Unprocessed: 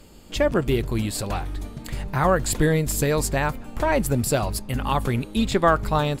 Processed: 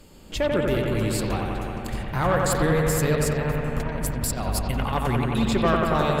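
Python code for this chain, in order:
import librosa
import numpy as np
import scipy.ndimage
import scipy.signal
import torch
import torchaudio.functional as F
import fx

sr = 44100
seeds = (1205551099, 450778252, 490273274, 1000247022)

y = fx.over_compress(x, sr, threshold_db=-26.0, ratio=-0.5, at=(3.15, 4.93))
y = 10.0 ** (-14.5 / 20.0) * np.tanh(y / 10.0 ** (-14.5 / 20.0))
y = fx.echo_bbd(y, sr, ms=90, stages=2048, feedback_pct=84, wet_db=-3.5)
y = y * 10.0 ** (-1.5 / 20.0)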